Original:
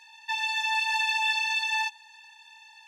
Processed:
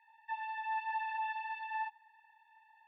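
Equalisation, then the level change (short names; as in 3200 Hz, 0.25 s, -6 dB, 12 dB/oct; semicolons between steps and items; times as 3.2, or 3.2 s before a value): double band-pass 1300 Hz, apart 1.1 oct; air absorption 270 m; -4.0 dB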